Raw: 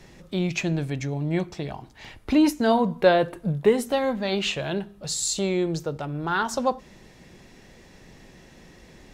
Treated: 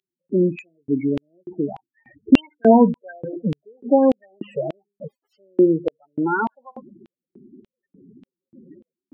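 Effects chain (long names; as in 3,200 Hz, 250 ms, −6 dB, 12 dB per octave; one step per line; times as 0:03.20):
gap after every zero crossing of 0.15 ms
spectral peaks only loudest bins 8
auto-filter high-pass square 1.7 Hz 270–3,100 Hz
level +6.5 dB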